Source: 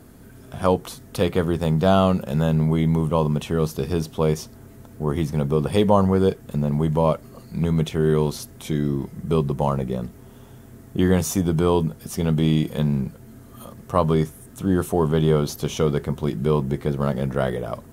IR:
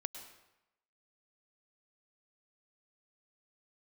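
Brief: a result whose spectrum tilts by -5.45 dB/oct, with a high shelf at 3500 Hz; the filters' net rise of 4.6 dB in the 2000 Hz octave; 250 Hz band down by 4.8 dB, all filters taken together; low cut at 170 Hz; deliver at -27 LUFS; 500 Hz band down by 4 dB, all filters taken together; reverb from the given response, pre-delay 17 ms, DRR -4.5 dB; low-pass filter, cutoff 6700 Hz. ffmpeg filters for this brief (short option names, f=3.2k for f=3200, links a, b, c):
-filter_complex "[0:a]highpass=170,lowpass=6.7k,equalizer=f=250:t=o:g=-3.5,equalizer=f=500:t=o:g=-4,equalizer=f=2k:t=o:g=8,highshelf=f=3.5k:g=-6,asplit=2[a][b];[1:a]atrim=start_sample=2205,adelay=17[c];[b][c]afir=irnorm=-1:irlink=0,volume=6dB[d];[a][d]amix=inputs=2:normalize=0,volume=-6.5dB"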